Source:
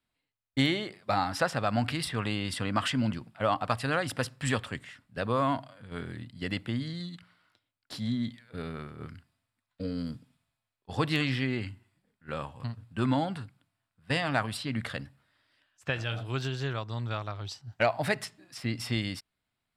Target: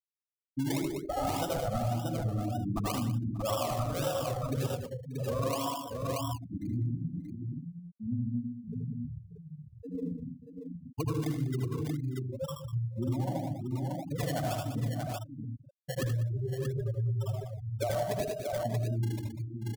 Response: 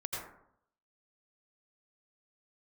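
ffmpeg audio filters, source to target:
-filter_complex "[1:a]atrim=start_sample=2205[s0];[0:a][s0]afir=irnorm=-1:irlink=0,afftfilt=real='re*gte(hypot(re,im),0.126)':imag='im*gte(hypot(re,im),0.126)':win_size=1024:overlap=0.75,acrossover=split=330|1100[s1][s2][s3];[s3]acrusher=samples=28:mix=1:aa=0.000001:lfo=1:lforange=16.8:lforate=1.9[s4];[s1][s2][s4]amix=inputs=3:normalize=0,highshelf=f=2400:g=11,aecho=1:1:77|97|197|585|632:0.501|0.224|0.224|0.1|0.447,acompressor=threshold=0.0398:ratio=6"

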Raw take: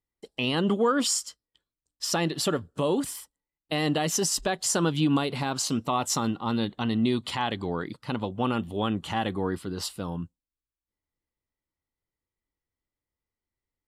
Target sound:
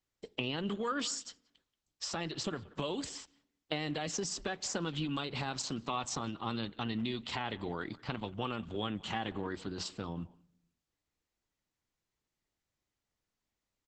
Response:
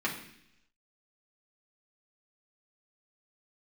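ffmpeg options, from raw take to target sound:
-filter_complex "[0:a]lowpass=7600,acrossover=split=84|1600[s0][s1][s2];[s0]acompressor=threshold=0.00251:ratio=4[s3];[s1]acompressor=threshold=0.0141:ratio=4[s4];[s2]acompressor=threshold=0.0126:ratio=4[s5];[s3][s4][s5]amix=inputs=3:normalize=0,asplit=2[s6][s7];[s7]adelay=180,highpass=300,lowpass=3400,asoftclip=type=hard:threshold=0.0531,volume=0.0891[s8];[s6][s8]amix=inputs=2:normalize=0,asplit=2[s9][s10];[1:a]atrim=start_sample=2205,highshelf=f=3500:g=-8.5[s11];[s10][s11]afir=irnorm=-1:irlink=0,volume=0.075[s12];[s9][s12]amix=inputs=2:normalize=0" -ar 48000 -c:a libopus -b:a 10k

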